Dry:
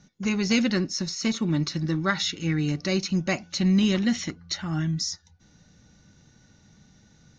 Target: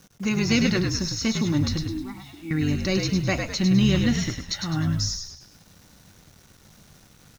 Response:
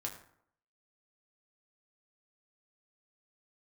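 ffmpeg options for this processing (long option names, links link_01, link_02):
-filter_complex "[0:a]asettb=1/sr,asplit=3[link_01][link_02][link_03];[link_01]atrim=end=1.824[link_04];[link_02]atrim=start=1.82:end=2.51,asetpts=PTS-STARTPTS,afade=type=in:duration=0.004:curve=qsin,afade=type=out:start_time=0.686:duration=0.004:curve=qsin,asplit=3[link_05][link_06][link_07];[link_05]bandpass=frequency=300:width_type=q:width=8,volume=0dB[link_08];[link_06]bandpass=frequency=870:width_type=q:width=8,volume=-6dB[link_09];[link_07]bandpass=frequency=2240:width_type=q:width=8,volume=-9dB[link_10];[link_08][link_09][link_10]amix=inputs=3:normalize=0[link_11];[link_03]atrim=start=2.506[link_12];[link_04][link_11]acrossfade=duration=0.004:curve1=hsin:curve2=qsin[link_13];[link_13][link_12]acrossfade=duration=0.004:curve1=qsin:curve2=hsin,acrusher=bits=8:mix=0:aa=0.000001,asplit=6[link_14][link_15][link_16][link_17][link_18][link_19];[link_15]adelay=103,afreqshift=-58,volume=-5dB[link_20];[link_16]adelay=206,afreqshift=-116,volume=-12.5dB[link_21];[link_17]adelay=309,afreqshift=-174,volume=-20.1dB[link_22];[link_18]adelay=412,afreqshift=-232,volume=-27.6dB[link_23];[link_19]adelay=515,afreqshift=-290,volume=-35.1dB[link_24];[link_14][link_20][link_21][link_22][link_23][link_24]amix=inputs=6:normalize=0,asplit=2[link_25][link_26];[1:a]atrim=start_sample=2205[link_27];[link_26][link_27]afir=irnorm=-1:irlink=0,volume=-16.5dB[link_28];[link_25][link_28]amix=inputs=2:normalize=0"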